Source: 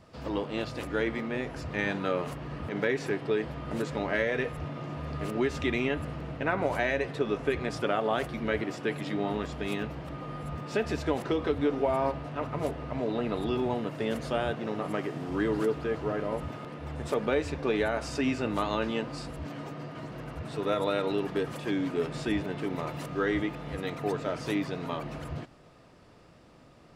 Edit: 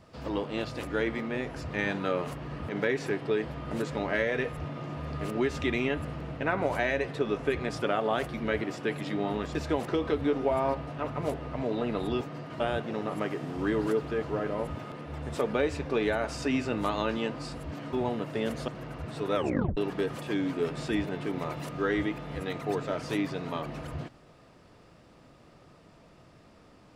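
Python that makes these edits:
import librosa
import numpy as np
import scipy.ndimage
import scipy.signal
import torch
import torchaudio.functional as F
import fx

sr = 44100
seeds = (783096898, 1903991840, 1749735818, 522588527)

y = fx.edit(x, sr, fx.cut(start_s=9.55, length_s=1.37),
    fx.swap(start_s=13.58, length_s=0.75, other_s=19.66, other_length_s=0.39),
    fx.tape_stop(start_s=20.72, length_s=0.42), tone=tone)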